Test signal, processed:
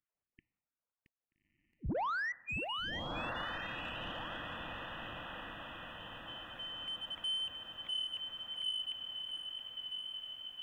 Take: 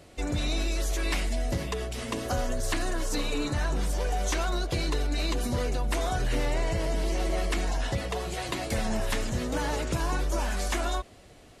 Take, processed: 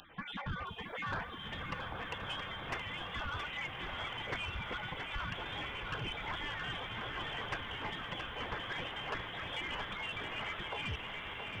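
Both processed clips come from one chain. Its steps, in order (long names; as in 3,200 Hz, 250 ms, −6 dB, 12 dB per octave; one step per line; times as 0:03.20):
time-frequency cells dropped at random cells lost 30%
first difference
reverb reduction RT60 1.6 s
low-shelf EQ 160 Hz −11 dB
tape wow and flutter 17 cents
on a send: feedback delay with all-pass diffusion 1,262 ms, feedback 53%, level −6.5 dB
on the sum: coupled-rooms reverb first 0.66 s, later 1.9 s, from −20 dB, DRR 19.5 dB
voice inversion scrambler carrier 3,800 Hz
in parallel at 0 dB: downward compressor, threshold −56 dBFS
on the sum: soft clipping −39.5 dBFS
feedback echo at a low word length 672 ms, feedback 35%, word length 13 bits, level −7 dB
level +8.5 dB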